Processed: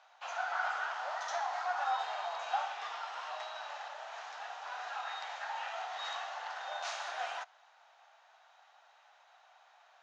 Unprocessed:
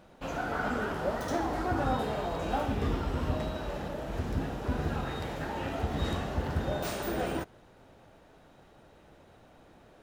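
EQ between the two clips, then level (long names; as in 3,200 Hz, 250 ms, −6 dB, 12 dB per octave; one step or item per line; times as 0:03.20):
Chebyshev band-pass filter 730–6,700 Hz, order 4
0.0 dB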